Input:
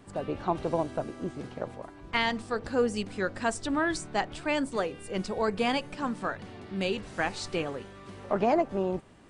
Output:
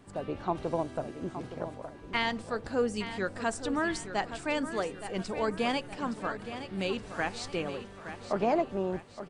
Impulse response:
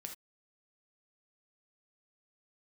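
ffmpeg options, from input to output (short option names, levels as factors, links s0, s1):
-af "aecho=1:1:869|1738|2607|3476:0.282|0.121|0.0521|0.0224,volume=0.75"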